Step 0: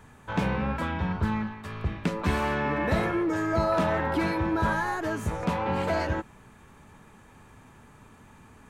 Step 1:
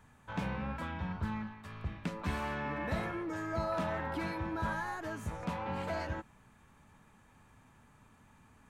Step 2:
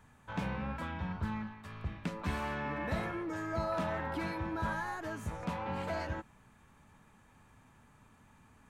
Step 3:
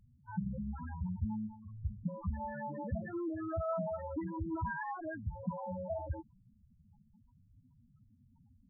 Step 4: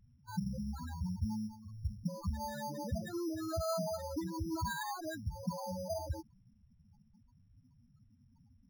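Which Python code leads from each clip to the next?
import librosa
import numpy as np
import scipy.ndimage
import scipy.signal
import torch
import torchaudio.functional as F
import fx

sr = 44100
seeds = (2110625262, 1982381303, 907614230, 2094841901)

y1 = fx.peak_eq(x, sr, hz=400.0, db=-5.5, octaves=0.6)
y1 = y1 * 10.0 ** (-9.0 / 20.0)
y2 = y1
y3 = fx.spec_topn(y2, sr, count=4)
y3 = y3 * 10.0 ** (2.0 / 20.0)
y4 = np.repeat(y3[::8], 8)[:len(y3)]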